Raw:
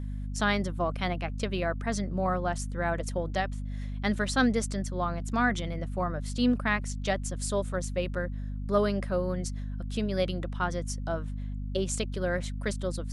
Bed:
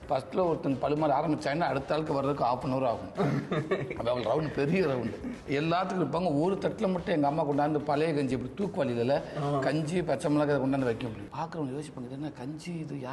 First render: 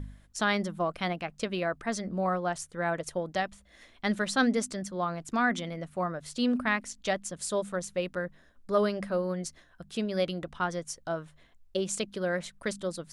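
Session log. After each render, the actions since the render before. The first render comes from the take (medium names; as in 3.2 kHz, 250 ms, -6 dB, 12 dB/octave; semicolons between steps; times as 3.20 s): de-hum 50 Hz, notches 5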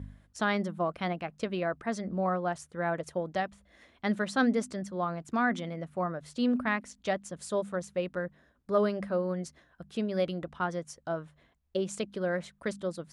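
high-pass 55 Hz; treble shelf 2.7 kHz -9 dB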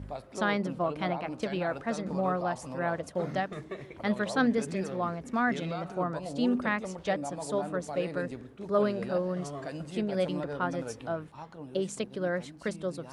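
add bed -10.5 dB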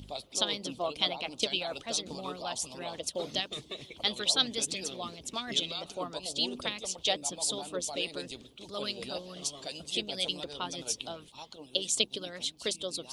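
harmonic-percussive split harmonic -15 dB; resonant high shelf 2.4 kHz +12 dB, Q 3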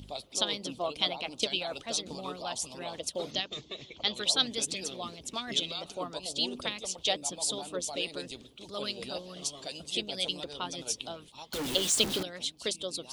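3.31–4.15 s: elliptic low-pass 7 kHz; 11.53–12.23 s: jump at every zero crossing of -29 dBFS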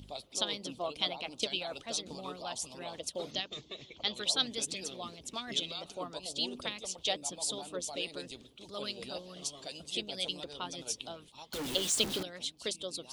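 trim -3.5 dB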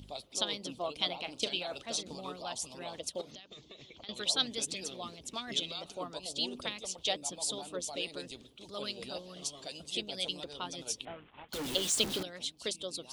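1.06–2.03 s: doubling 39 ms -12.5 dB; 3.21–4.09 s: compression, threshold -47 dBFS; 11.05–11.49 s: CVSD coder 16 kbps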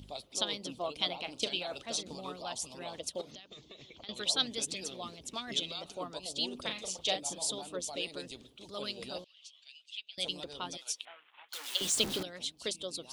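6.62–7.50 s: doubling 37 ms -6.5 dB; 9.24–10.18 s: ladder band-pass 3.1 kHz, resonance 55%; 10.77–11.81 s: high-pass 1.2 kHz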